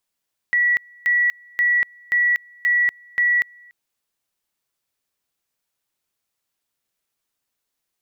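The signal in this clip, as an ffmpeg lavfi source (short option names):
-f lavfi -i "aevalsrc='pow(10,(-14.5-29.5*gte(mod(t,0.53),0.24))/20)*sin(2*PI*1940*t)':d=3.18:s=44100"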